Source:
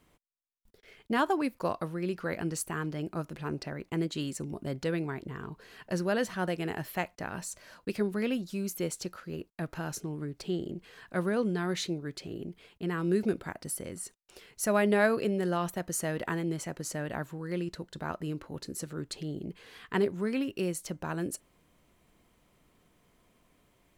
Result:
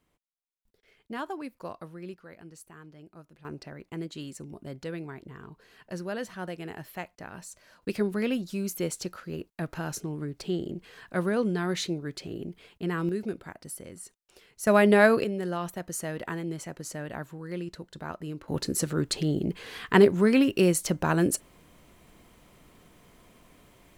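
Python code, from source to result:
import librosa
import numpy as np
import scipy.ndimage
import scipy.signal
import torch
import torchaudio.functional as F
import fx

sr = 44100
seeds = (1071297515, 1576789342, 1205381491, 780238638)

y = fx.gain(x, sr, db=fx.steps((0.0, -8.0), (2.14, -15.0), (3.45, -5.0), (7.82, 2.5), (13.09, -4.0), (14.67, 6.0), (15.24, -1.5), (18.48, 10.0)))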